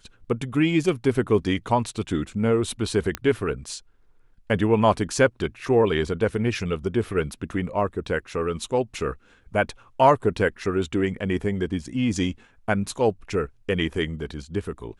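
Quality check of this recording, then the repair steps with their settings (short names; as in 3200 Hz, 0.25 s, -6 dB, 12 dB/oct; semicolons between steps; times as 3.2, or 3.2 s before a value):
3.15 pop -11 dBFS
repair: de-click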